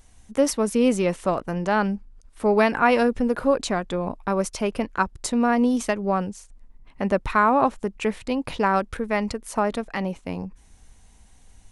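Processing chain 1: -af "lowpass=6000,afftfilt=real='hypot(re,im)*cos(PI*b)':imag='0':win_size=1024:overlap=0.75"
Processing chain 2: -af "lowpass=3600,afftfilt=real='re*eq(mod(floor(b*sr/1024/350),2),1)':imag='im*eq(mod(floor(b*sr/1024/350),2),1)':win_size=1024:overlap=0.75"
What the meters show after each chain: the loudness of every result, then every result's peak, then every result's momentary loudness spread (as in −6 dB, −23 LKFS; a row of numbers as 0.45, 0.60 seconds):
−28.5, −27.0 LKFS; −7.5, −9.0 dBFS; 11, 11 LU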